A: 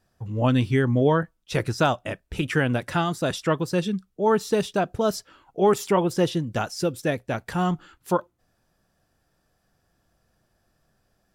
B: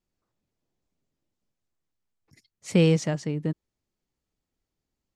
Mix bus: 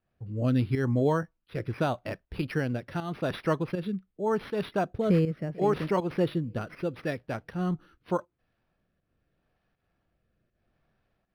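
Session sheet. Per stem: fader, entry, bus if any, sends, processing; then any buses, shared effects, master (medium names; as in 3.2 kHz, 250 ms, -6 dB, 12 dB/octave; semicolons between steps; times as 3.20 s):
-3.5 dB, 0.00 s, no send, no echo send, none
-3.0 dB, 2.35 s, no send, echo send -21.5 dB, Savitzky-Golay filter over 25 samples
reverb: none
echo: feedback delay 443 ms, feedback 43%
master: rotary cabinet horn 0.8 Hz; volume shaper 80 bpm, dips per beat 1, -10 dB, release 164 ms; decimation joined by straight lines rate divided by 6×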